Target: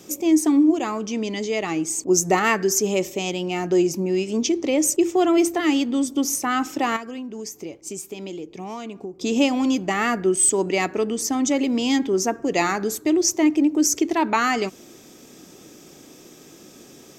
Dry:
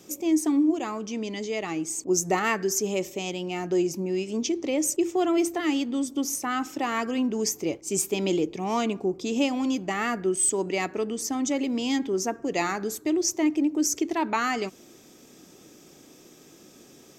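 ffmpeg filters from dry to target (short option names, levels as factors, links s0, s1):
-filter_complex "[0:a]asettb=1/sr,asplit=3[s0][s1][s2];[s0]atrim=end=6.964[s3];[s1]atrim=start=6.96:end=9.21,asetpts=PTS-STARTPTS,afade=t=in:d=0.004:c=qsin,afade=t=out:st=2.246:d=0.004:c=qsin,acompressor=threshold=0.0158:ratio=10[s4];[s2]atrim=start=9.206[s5];[s3][s4]acrossfade=d=0.004:c1=hsin:c2=qsin[s6];[s6][s5]acrossfade=d=0.004:c1=qsin:c2=hsin,volume=1.88"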